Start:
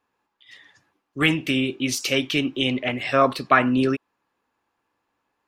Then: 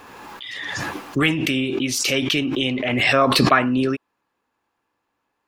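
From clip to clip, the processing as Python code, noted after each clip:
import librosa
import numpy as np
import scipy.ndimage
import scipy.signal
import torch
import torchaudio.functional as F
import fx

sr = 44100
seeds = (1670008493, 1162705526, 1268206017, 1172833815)

y = fx.pre_swell(x, sr, db_per_s=23.0)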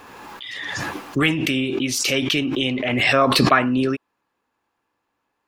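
y = x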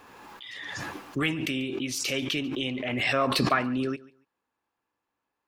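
y = fx.echo_feedback(x, sr, ms=141, feedback_pct=21, wet_db=-21)
y = y * librosa.db_to_amplitude(-8.5)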